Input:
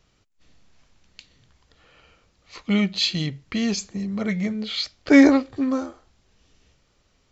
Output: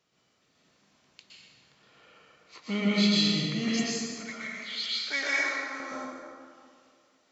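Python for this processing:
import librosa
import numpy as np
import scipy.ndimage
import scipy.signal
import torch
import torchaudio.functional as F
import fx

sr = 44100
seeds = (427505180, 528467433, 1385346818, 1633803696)

y = fx.highpass(x, sr, hz=fx.steps((0.0, 210.0), (3.68, 1400.0), (5.8, 360.0)), slope=12)
y = fx.rev_plate(y, sr, seeds[0], rt60_s=2.1, hf_ratio=0.6, predelay_ms=105, drr_db=-7.0)
y = y * librosa.db_to_amplitude(-8.0)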